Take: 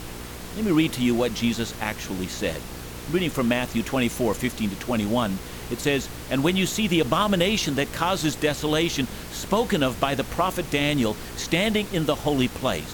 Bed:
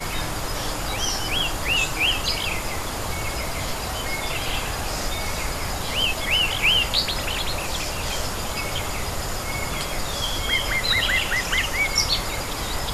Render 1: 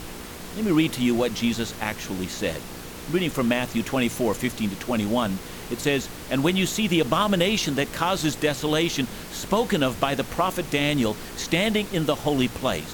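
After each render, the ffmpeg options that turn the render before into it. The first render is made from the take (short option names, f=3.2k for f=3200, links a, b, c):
-af "bandreject=f=60:t=h:w=4,bandreject=f=120:t=h:w=4"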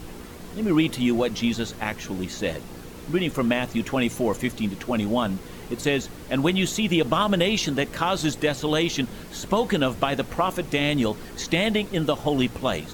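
-af "afftdn=nr=7:nf=-38"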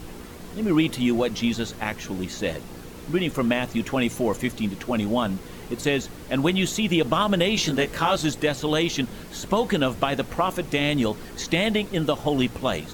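-filter_complex "[0:a]asettb=1/sr,asplit=3[a][b][c];[a]atrim=end=7.554[d];[b]atrim=start=7.55:end=8.16,asetpts=PTS-STARTPTS,afade=t=in:d=0.004:c=qsin,afade=t=out:st=0.606:d=0.004:c=qsin,asplit=2[e][f];[f]adelay=19,volume=-3dB[g];[e][g]amix=inputs=2:normalize=0,atrim=end_sample=26901[h];[c]atrim=start=8.156[i];[d][h]acrossfade=d=0.004:c1=hsin:c2=qsin[j];[j][i]acrossfade=d=0.004:c1=qsin:c2=hsin"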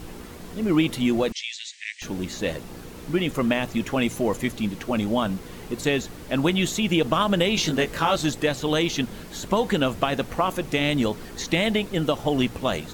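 -filter_complex "[0:a]asettb=1/sr,asplit=3[a][b][c];[a]atrim=end=1.324[d];[b]atrim=start=1.32:end=2.02,asetpts=PTS-STARTPTS,afade=t=in:d=0.004:c=qsin,afade=t=out:st=0.696:d=0.004:c=qsin,asuperpass=centerf=4200:order=20:qfactor=0.61[e];[c]atrim=start=2.016[f];[d][e]acrossfade=d=0.004:c1=hsin:c2=qsin[g];[g][f]acrossfade=d=0.004:c1=qsin:c2=hsin"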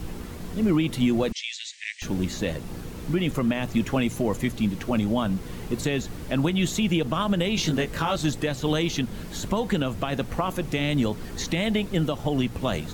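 -filter_complex "[0:a]acrossover=split=210|5000[a][b][c];[a]acontrast=63[d];[d][b][c]amix=inputs=3:normalize=0,alimiter=limit=-13.5dB:level=0:latency=1:release=264"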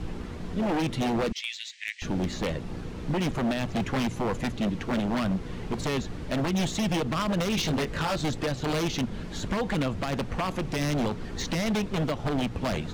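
-af "adynamicsmooth=sensitivity=2.5:basefreq=5.5k,aeval=exprs='0.0891*(abs(mod(val(0)/0.0891+3,4)-2)-1)':c=same"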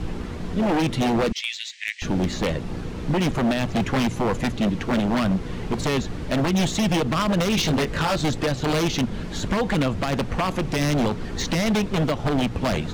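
-af "volume=5.5dB"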